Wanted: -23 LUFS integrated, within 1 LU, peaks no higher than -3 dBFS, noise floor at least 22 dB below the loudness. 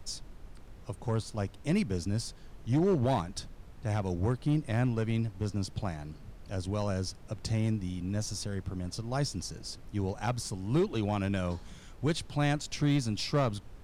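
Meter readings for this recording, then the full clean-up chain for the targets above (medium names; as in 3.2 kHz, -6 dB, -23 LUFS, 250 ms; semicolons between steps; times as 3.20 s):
clipped samples 0.7%; clipping level -21.0 dBFS; noise floor -50 dBFS; noise floor target -55 dBFS; loudness -32.5 LUFS; peak level -21.0 dBFS; loudness target -23.0 LUFS
-> clip repair -21 dBFS; noise print and reduce 6 dB; trim +9.5 dB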